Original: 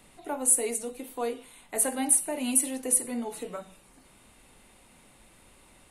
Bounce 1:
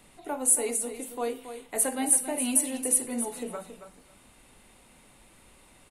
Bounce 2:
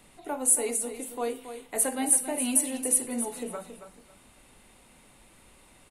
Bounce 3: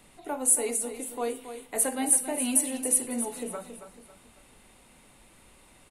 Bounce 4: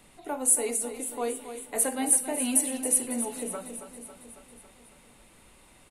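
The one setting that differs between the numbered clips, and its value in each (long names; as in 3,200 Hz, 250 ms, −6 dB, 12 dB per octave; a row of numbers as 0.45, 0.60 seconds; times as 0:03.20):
repeating echo, feedback: 16, 24, 37, 61%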